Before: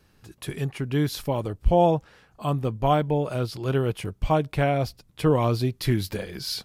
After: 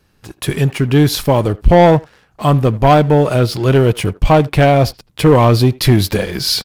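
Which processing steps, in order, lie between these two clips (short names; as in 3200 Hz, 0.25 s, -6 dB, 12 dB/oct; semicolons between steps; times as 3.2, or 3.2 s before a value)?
sample leveller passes 2; speakerphone echo 80 ms, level -20 dB; gain +7 dB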